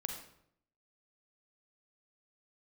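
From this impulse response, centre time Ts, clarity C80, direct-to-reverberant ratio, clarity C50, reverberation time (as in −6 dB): 28 ms, 7.5 dB, 3.0 dB, 5.0 dB, 0.70 s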